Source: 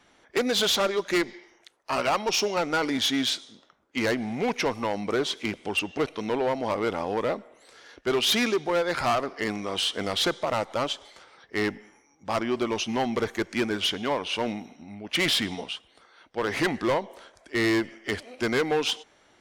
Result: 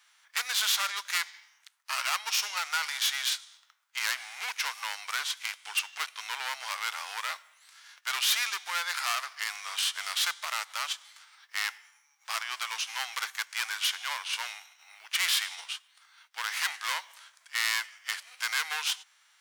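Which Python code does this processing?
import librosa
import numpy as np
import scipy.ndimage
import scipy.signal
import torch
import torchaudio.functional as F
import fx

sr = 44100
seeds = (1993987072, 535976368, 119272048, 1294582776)

y = fx.envelope_flatten(x, sr, power=0.6)
y = scipy.signal.sosfilt(scipy.signal.butter(4, 1100.0, 'highpass', fs=sr, output='sos'), y)
y = y * librosa.db_to_amplitude(-2.0)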